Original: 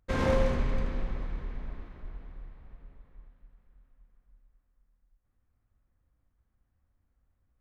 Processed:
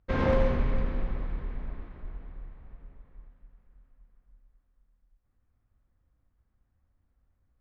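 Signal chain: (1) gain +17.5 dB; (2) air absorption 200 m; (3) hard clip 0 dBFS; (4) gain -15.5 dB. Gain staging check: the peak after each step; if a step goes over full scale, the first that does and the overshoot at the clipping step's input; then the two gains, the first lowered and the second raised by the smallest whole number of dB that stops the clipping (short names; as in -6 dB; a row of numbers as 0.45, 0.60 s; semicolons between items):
+4.5, +4.0, 0.0, -15.5 dBFS; step 1, 4.0 dB; step 1 +13.5 dB, step 4 -11.5 dB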